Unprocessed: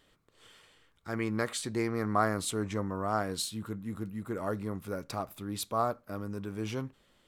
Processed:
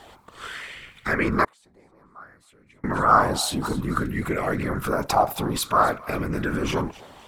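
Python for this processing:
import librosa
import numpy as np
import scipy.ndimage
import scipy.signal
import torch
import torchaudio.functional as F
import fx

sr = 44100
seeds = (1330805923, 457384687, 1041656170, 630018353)

p1 = fx.over_compress(x, sr, threshold_db=-42.0, ratio=-1.0)
p2 = x + F.gain(torch.from_numpy(p1), 0.0).numpy()
p3 = fx.whisperise(p2, sr, seeds[0])
p4 = p3 + fx.echo_thinned(p3, sr, ms=263, feedback_pct=35, hz=920.0, wet_db=-17, dry=0)
p5 = fx.gate_flip(p4, sr, shuts_db=-26.0, range_db=-33, at=(1.44, 2.84))
p6 = fx.bell_lfo(p5, sr, hz=0.57, low_hz=780.0, high_hz=2300.0, db=15)
y = F.gain(torch.from_numpy(p6), 5.5).numpy()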